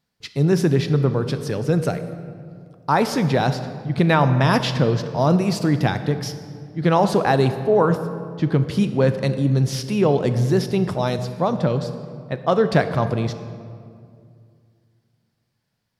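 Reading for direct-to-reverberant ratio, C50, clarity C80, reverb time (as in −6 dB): 9.5 dB, 10.5 dB, 11.5 dB, 2.3 s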